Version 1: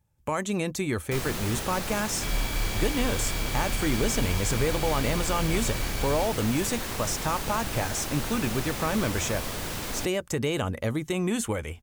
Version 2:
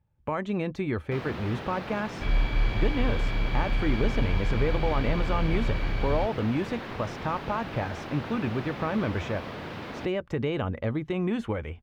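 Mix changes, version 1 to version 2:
first sound: add high-pass filter 110 Hz
second sound +4.5 dB
master: add high-frequency loss of the air 340 metres

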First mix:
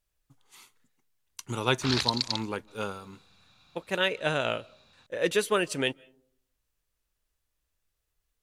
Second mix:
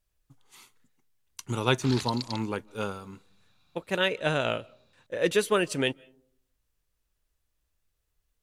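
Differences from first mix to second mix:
background −8.5 dB
master: add low-shelf EQ 370 Hz +4 dB

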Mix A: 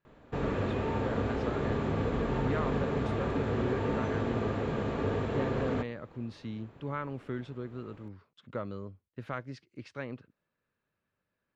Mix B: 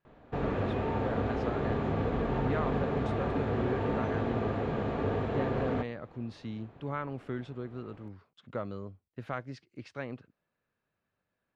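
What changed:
background: add high-frequency loss of the air 110 metres
master: add parametric band 730 Hz +5.5 dB 0.29 octaves

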